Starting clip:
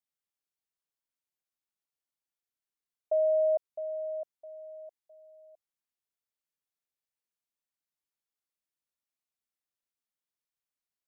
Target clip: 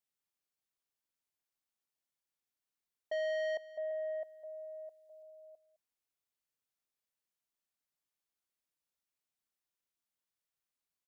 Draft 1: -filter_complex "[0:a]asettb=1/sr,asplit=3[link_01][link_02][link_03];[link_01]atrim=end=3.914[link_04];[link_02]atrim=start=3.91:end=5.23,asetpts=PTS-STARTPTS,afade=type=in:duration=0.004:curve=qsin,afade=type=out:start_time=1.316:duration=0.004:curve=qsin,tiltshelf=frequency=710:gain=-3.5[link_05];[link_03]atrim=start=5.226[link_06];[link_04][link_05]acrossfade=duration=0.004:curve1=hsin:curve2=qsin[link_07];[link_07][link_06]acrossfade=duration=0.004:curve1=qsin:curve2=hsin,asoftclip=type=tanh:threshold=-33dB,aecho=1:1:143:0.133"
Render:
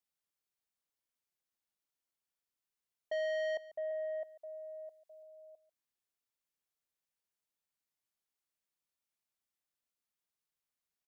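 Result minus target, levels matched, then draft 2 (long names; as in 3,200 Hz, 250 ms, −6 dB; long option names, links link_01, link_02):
echo 67 ms early
-filter_complex "[0:a]asettb=1/sr,asplit=3[link_01][link_02][link_03];[link_01]atrim=end=3.914[link_04];[link_02]atrim=start=3.91:end=5.23,asetpts=PTS-STARTPTS,afade=type=in:duration=0.004:curve=qsin,afade=type=out:start_time=1.316:duration=0.004:curve=qsin,tiltshelf=frequency=710:gain=-3.5[link_05];[link_03]atrim=start=5.226[link_06];[link_04][link_05]acrossfade=duration=0.004:curve1=hsin:curve2=qsin[link_07];[link_07][link_06]acrossfade=duration=0.004:curve1=qsin:curve2=hsin,asoftclip=type=tanh:threshold=-33dB,aecho=1:1:210:0.133"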